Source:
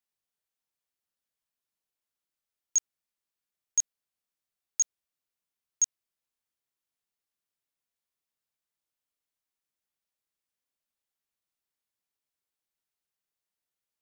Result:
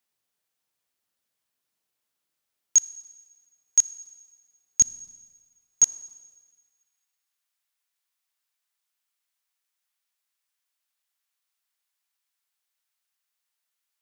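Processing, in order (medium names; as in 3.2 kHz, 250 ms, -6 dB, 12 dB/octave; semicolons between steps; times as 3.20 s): high-pass 75 Hz 12 dB/octave, from 4.82 s 190 Hz, from 5.83 s 970 Hz; Schroeder reverb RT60 1.5 s, combs from 28 ms, DRR 18 dB; trim +7.5 dB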